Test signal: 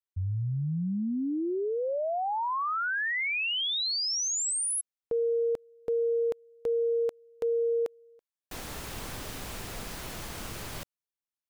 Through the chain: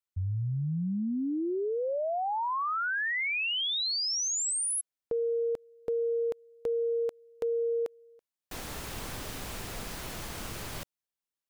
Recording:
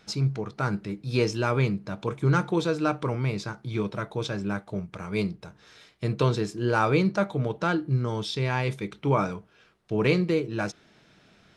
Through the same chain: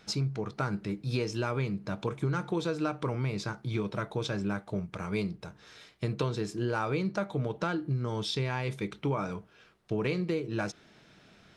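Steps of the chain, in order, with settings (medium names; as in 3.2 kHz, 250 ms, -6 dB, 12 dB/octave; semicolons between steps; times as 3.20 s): compression, threshold -27 dBFS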